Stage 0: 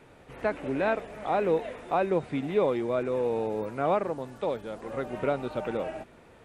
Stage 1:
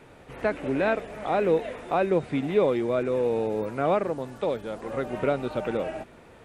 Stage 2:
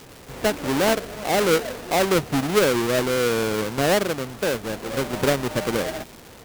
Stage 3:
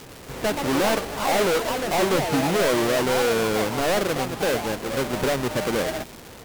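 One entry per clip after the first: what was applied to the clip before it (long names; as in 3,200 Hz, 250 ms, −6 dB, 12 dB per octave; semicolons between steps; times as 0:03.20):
dynamic equaliser 920 Hz, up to −4 dB, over −38 dBFS, Q 1.8; level +3.5 dB
each half-wave held at its own peak; surface crackle 480 per second −33 dBFS
in parallel at −6 dB: sine wavefolder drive 9 dB, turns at −10.5 dBFS; on the sum: delay with pitch and tempo change per echo 240 ms, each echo +5 semitones, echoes 2, each echo −6 dB; level −8 dB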